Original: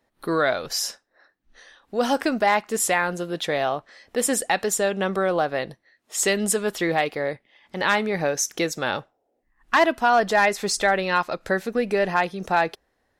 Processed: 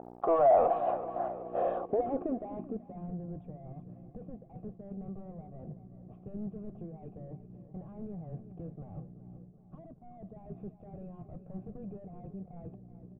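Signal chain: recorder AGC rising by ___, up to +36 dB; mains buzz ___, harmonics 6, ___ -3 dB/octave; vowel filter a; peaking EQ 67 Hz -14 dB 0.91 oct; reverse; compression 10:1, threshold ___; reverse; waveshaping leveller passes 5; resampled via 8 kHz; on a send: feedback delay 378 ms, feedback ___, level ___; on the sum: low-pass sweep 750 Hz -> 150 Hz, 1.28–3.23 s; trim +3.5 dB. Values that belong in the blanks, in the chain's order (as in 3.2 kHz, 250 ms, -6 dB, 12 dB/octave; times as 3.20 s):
19 dB/s, 60 Hz, -42 dBFS, -38 dBFS, 60%, -13 dB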